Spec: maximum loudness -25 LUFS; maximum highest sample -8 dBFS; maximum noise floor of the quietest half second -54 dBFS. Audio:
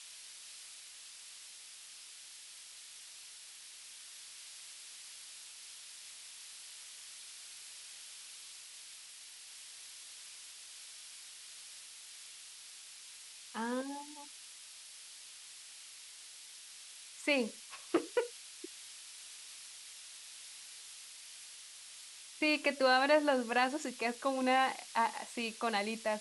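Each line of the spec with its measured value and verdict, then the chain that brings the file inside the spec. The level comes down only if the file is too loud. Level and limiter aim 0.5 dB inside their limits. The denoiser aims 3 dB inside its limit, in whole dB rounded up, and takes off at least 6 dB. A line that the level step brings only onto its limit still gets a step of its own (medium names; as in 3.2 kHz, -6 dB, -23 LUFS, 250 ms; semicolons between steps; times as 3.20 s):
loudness -38.5 LUFS: pass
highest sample -16.5 dBFS: pass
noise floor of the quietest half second -53 dBFS: fail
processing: noise reduction 6 dB, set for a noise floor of -53 dBFS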